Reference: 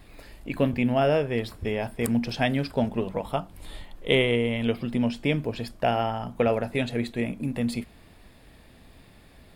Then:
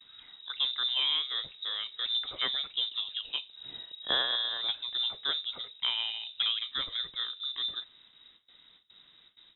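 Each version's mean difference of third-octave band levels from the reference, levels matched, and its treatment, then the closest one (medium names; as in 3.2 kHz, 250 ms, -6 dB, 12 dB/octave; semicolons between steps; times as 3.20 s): 14.5 dB: gate with hold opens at -42 dBFS; frequency inversion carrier 3.8 kHz; trim -7.5 dB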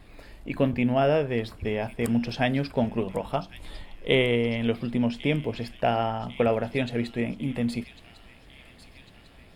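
1.5 dB: treble shelf 6.6 kHz -7.5 dB; on a send: feedback echo behind a high-pass 1099 ms, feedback 62%, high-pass 2.9 kHz, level -12 dB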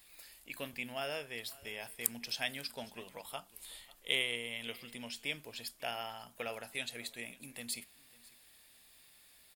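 10.0 dB: pre-emphasis filter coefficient 0.97; delay 547 ms -22 dB; trim +2.5 dB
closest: second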